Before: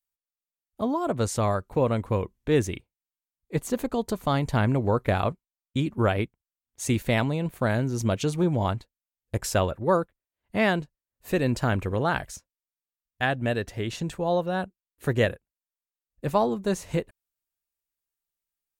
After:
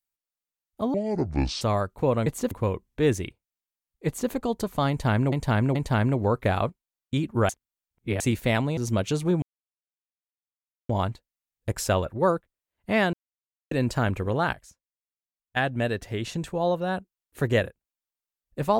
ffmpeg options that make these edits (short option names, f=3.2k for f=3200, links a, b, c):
-filter_complex "[0:a]asplit=15[a][b][c][d][e][f][g][h][i][j][k][l][m][n][o];[a]atrim=end=0.944[p];[b]atrim=start=0.94:end=1.35,asetpts=PTS-STARTPTS,asetrate=26901,aresample=44100[q];[c]atrim=start=1.346:end=2.002[r];[d]atrim=start=3.548:end=3.802[s];[e]atrim=start=1.998:end=4.812[t];[f]atrim=start=4.378:end=4.812[u];[g]atrim=start=4.378:end=6.122[v];[h]atrim=start=6.118:end=6.832,asetpts=PTS-STARTPTS,areverse[w];[i]atrim=start=6.828:end=7.402[x];[j]atrim=start=7.898:end=8.55,asetpts=PTS-STARTPTS,afade=t=out:st=0.648:d=0.004:c=hsin,apad=pad_dur=1.47[y];[k]atrim=start=8.55:end=10.79,asetpts=PTS-STARTPTS,afade=t=in:d=0.004:c=hsin,afade=t=out:st=2.236:d=0.004:c=hsin[z];[l]atrim=start=10.79:end=11.37,asetpts=PTS-STARTPTS,volume=0[aa];[m]atrim=start=11.37:end=12.192,asetpts=PTS-STARTPTS,afade=t=in:d=0.004:c=hsin[ab];[n]atrim=start=12.188:end=13.222,asetpts=PTS-STARTPTS,volume=-11dB[ac];[o]atrim=start=13.218[ad];[p][q]acrossfade=d=0.004:c1=hsin:c2=hsin[ae];[ae][r]acrossfade=d=0.004:c1=hsin:c2=hsin[af];[af][s]acrossfade=d=0.004:c1=hsin:c2=hsin[ag];[ag][t]acrossfade=d=0.004:c1=hsin:c2=hsin[ah];[ah][u]acrossfade=d=0.004:c1=hsin:c2=hsin[ai];[ai][v]acrossfade=d=0.004:c1=hsin:c2=hsin[aj];[aj][w]acrossfade=d=0.004:c1=hsin:c2=hsin[ak];[ak][x]acrossfade=d=0.004:c1=hsin:c2=hsin[al];[y][z][aa][ab]concat=n=4:v=0:a=1[am];[al][am]acrossfade=d=0.004:c1=hsin:c2=hsin[an];[an][ac]acrossfade=d=0.004:c1=hsin:c2=hsin[ao];[ao][ad]acrossfade=d=0.004:c1=hsin:c2=hsin"